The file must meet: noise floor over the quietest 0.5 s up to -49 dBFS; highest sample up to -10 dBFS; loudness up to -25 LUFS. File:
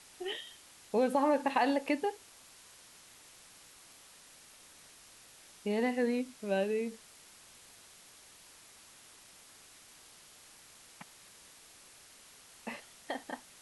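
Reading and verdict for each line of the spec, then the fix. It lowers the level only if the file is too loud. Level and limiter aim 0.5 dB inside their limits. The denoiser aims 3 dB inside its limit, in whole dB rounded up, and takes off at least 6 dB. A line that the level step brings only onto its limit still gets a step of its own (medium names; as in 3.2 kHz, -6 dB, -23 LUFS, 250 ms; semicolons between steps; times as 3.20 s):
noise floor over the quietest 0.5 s -57 dBFS: pass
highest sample -15.0 dBFS: pass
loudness -33.5 LUFS: pass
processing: none needed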